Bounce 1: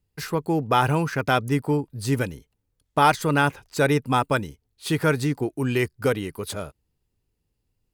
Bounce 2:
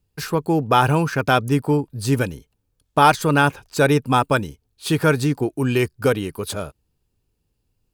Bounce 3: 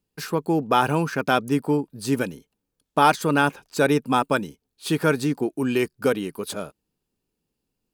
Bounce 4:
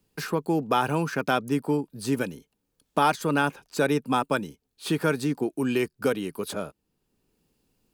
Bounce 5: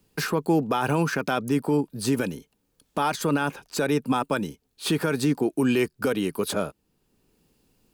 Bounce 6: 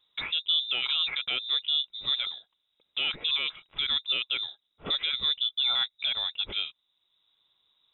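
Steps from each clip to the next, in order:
band-stop 2 kHz, Q 9.1; trim +4 dB
resonant low shelf 140 Hz -10 dB, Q 1.5; trim -3.5 dB
three bands compressed up and down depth 40%; trim -3.5 dB
peak limiter -19.5 dBFS, peak gain reduction 10.5 dB; trim +5.5 dB
frequency inversion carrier 3.8 kHz; trim -5 dB

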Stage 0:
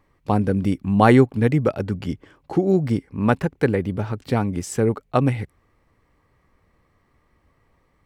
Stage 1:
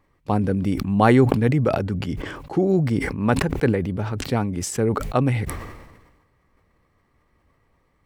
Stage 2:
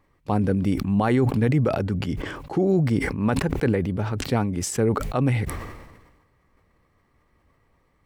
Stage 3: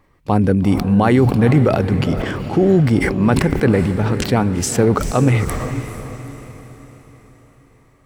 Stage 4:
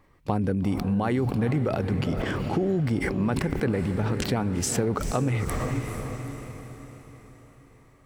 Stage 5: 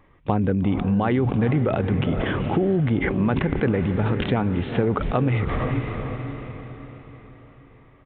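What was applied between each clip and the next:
decay stretcher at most 46 dB/s; trim -2 dB
peak limiter -12 dBFS, peak gain reduction 10 dB
echo that smears into a reverb 450 ms, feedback 47%, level -10.5 dB; trim +7 dB
compression 4:1, threshold -20 dBFS, peak gain reduction 10 dB; trim -3 dB
resampled via 8 kHz; trim +4 dB

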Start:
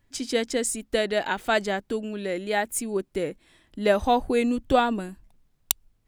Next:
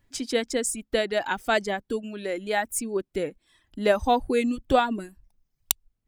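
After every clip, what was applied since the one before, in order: reverb removal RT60 0.82 s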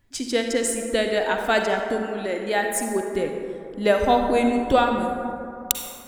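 reverberation RT60 2.7 s, pre-delay 38 ms, DRR 3 dB; trim +2 dB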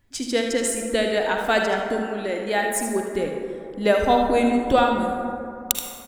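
delay 77 ms -9 dB

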